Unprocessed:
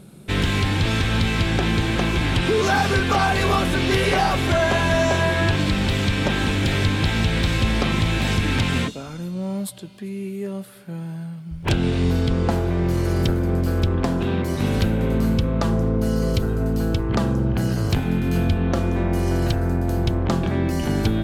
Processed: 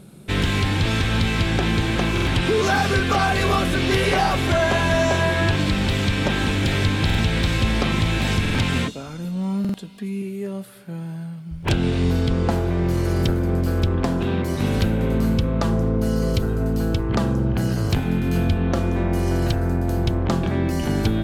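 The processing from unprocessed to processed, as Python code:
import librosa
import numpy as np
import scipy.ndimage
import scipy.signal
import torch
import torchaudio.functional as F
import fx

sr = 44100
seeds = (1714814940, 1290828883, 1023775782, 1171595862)

y = fx.notch(x, sr, hz=900.0, q=8.2, at=(2.71, 3.83))
y = fx.comb(y, sr, ms=4.3, depth=0.69, at=(9.24, 10.22))
y = fx.buffer_glitch(y, sr, at_s=(2.13, 7.05, 8.41, 9.6), block=2048, repeats=2)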